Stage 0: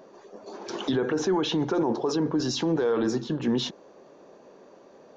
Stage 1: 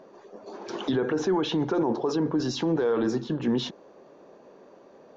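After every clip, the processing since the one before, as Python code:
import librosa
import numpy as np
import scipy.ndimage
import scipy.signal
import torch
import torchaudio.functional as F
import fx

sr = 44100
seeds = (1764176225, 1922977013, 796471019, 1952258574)

y = fx.lowpass(x, sr, hz=4000.0, slope=6)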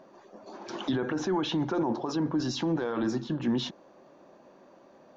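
y = fx.peak_eq(x, sr, hz=440.0, db=-13.5, octaves=0.23)
y = F.gain(torch.from_numpy(y), -1.5).numpy()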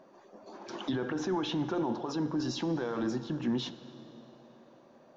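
y = fx.rev_plate(x, sr, seeds[0], rt60_s=3.6, hf_ratio=0.75, predelay_ms=0, drr_db=12.5)
y = F.gain(torch.from_numpy(y), -3.5).numpy()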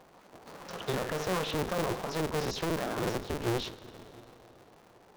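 y = fx.cycle_switch(x, sr, every=2, mode='inverted')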